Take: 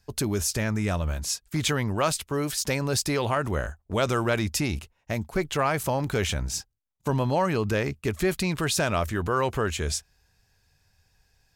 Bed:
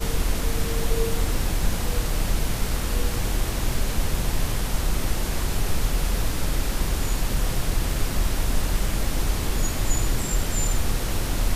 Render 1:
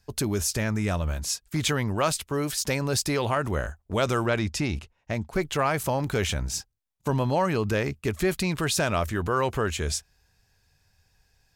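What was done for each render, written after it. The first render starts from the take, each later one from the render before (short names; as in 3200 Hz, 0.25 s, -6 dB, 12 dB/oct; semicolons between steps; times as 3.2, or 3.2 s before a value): 4.26–5.33 air absorption 55 m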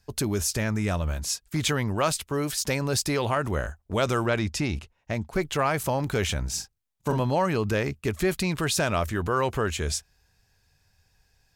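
6.54–7.2 doubler 40 ms -6 dB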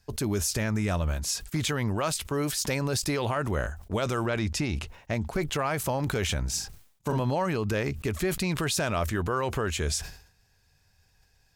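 limiter -18.5 dBFS, peak gain reduction 6 dB; sustainer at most 100 dB/s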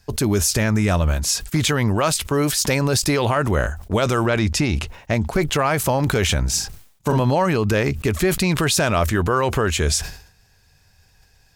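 gain +9 dB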